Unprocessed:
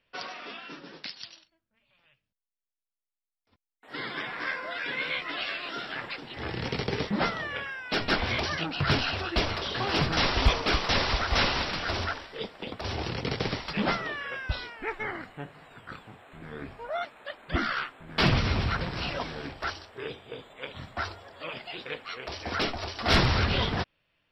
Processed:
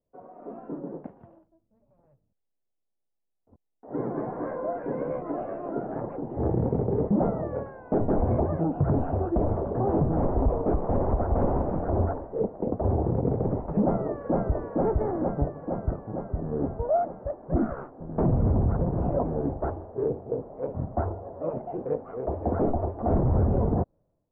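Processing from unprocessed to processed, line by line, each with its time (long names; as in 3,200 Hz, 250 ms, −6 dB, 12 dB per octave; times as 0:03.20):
0:13.83–0:14.56: delay throw 460 ms, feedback 70%, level −2.5 dB
whole clip: inverse Chebyshev low-pass filter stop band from 4,200 Hz, stop band 80 dB; automatic gain control gain up to 16.5 dB; brickwall limiter −11 dBFS; level −4.5 dB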